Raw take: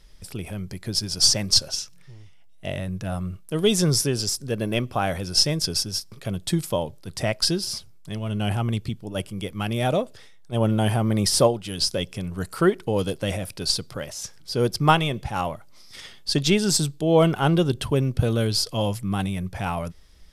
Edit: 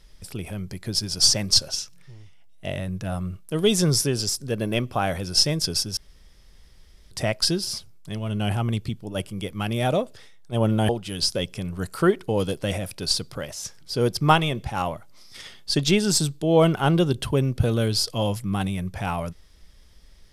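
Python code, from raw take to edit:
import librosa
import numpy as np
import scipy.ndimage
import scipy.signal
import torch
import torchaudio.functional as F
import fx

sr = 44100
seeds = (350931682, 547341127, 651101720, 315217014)

y = fx.edit(x, sr, fx.room_tone_fill(start_s=5.97, length_s=1.14),
    fx.cut(start_s=10.89, length_s=0.59), tone=tone)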